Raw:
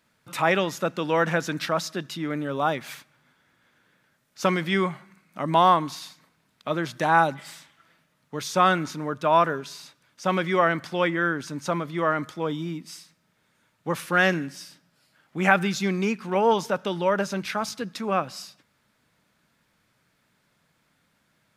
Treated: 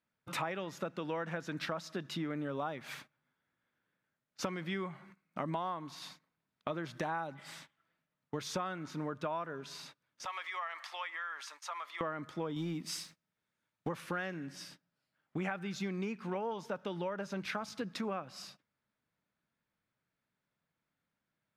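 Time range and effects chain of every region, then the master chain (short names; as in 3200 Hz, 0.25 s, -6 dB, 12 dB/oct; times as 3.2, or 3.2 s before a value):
10.25–12.01 HPF 900 Hz 24 dB/oct + notch 1500 Hz, Q 7.6 + compressor 3:1, threshold -38 dBFS
12.56–13.89 high shelf 3400 Hz +7 dB + sample leveller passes 1
whole clip: gate -49 dBFS, range -18 dB; high shelf 4900 Hz -10 dB; compressor 12:1, threshold -34 dBFS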